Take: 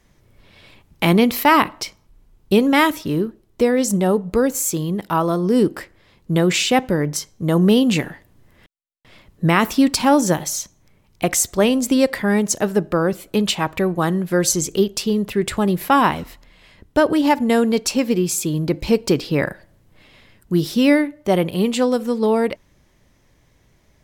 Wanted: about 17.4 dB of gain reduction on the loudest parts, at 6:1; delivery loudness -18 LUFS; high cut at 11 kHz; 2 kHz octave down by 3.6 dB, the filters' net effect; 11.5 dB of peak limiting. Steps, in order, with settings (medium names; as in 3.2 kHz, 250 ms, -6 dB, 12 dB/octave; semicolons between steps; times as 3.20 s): low-pass 11 kHz; peaking EQ 2 kHz -4.5 dB; compression 6:1, threshold -30 dBFS; trim +17.5 dB; peak limiter -7.5 dBFS